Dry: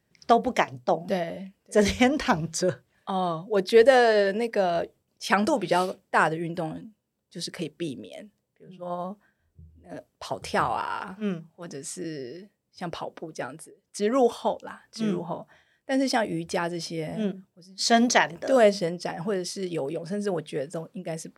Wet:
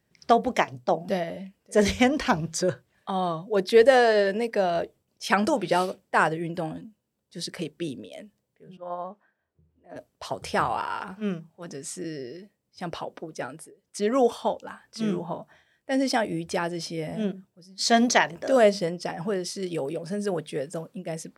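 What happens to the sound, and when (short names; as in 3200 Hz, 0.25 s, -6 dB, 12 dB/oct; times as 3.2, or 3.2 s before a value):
8.77–9.96 band-pass 930 Hz, Q 0.58
19.62–21.03 high shelf 7900 Hz +5 dB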